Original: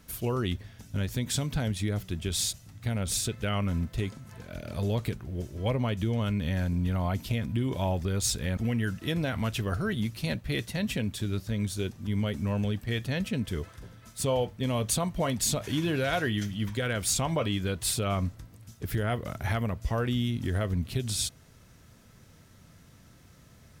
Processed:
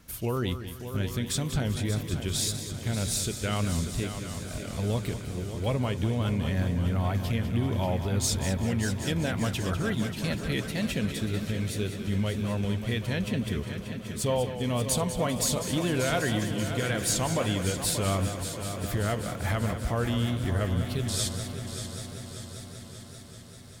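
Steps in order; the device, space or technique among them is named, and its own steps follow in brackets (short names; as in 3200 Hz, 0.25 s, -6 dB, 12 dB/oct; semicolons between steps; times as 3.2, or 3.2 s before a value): multi-head tape echo (multi-head echo 0.195 s, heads first and third, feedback 74%, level -11 dB; wow and flutter)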